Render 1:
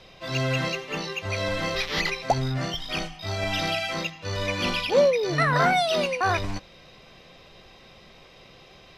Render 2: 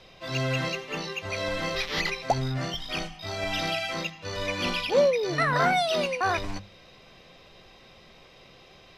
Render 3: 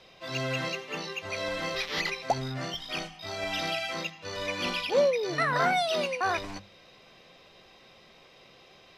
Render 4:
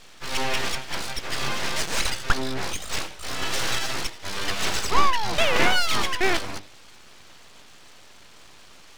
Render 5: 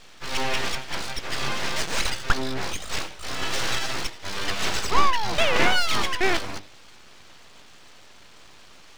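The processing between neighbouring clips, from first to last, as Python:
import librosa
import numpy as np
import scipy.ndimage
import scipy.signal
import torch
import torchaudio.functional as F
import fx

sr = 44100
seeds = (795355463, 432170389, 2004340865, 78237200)

y1 = fx.hum_notches(x, sr, base_hz=50, count=4)
y1 = F.gain(torch.from_numpy(y1), -2.0).numpy()
y2 = fx.low_shelf(y1, sr, hz=110.0, db=-11.0)
y2 = F.gain(torch.from_numpy(y2), -2.0).numpy()
y3 = np.abs(y2)
y3 = F.gain(torch.from_numpy(y3), 8.5).numpy()
y4 = scipy.ndimage.median_filter(y3, 3, mode='constant')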